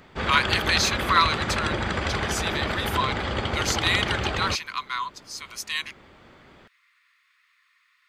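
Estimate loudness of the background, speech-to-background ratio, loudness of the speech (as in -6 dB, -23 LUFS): -27.0 LUFS, 1.0 dB, -26.0 LUFS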